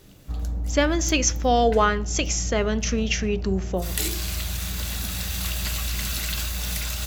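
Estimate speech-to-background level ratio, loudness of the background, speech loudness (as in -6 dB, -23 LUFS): 5.5 dB, -29.0 LUFS, -23.5 LUFS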